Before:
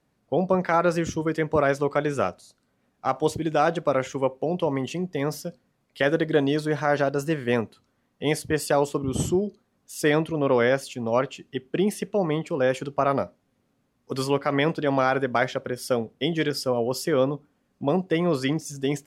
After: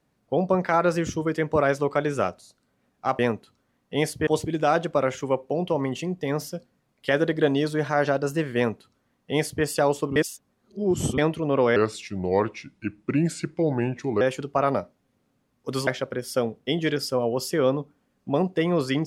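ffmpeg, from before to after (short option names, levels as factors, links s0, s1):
-filter_complex "[0:a]asplit=8[s0][s1][s2][s3][s4][s5][s6][s7];[s0]atrim=end=3.192[s8];[s1]atrim=start=7.478:end=8.562[s9];[s2]atrim=start=3.188:end=9.082[s10];[s3]atrim=start=9.078:end=10.102,asetpts=PTS-STARTPTS,areverse[s11];[s4]atrim=start=10.098:end=10.684[s12];[s5]atrim=start=10.68:end=12.64,asetpts=PTS-STARTPTS,asetrate=35280,aresample=44100[s13];[s6]atrim=start=12.636:end=14.302[s14];[s7]atrim=start=15.408[s15];[s8][s9]acrossfade=d=0.004:c1=hsin:c2=hsin[s16];[s16][s10]acrossfade=d=0.004:c1=hsin:c2=hsin[s17];[s17][s11]acrossfade=d=0.004:c1=hsin:c2=hsin[s18];[s18][s12]acrossfade=d=0.004:c1=hsin:c2=hsin[s19];[s19][s13]acrossfade=d=0.004:c1=hsin:c2=hsin[s20];[s20][s14]acrossfade=d=0.004:c1=hsin:c2=hsin[s21];[s21][s15]acrossfade=d=0.004:c1=hsin:c2=hsin"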